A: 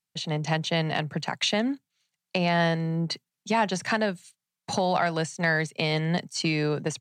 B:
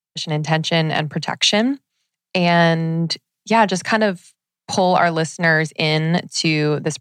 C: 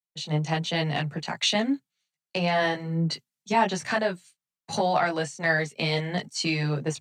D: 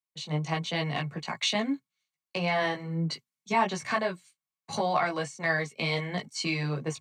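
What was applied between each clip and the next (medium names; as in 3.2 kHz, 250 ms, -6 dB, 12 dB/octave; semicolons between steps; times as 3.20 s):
three bands expanded up and down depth 40%; trim +8.5 dB
chorus voices 4, 0.39 Hz, delay 17 ms, depth 4.7 ms; trim -5.5 dB
small resonant body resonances 1.1/2.2 kHz, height 13 dB, ringing for 55 ms; trim -4 dB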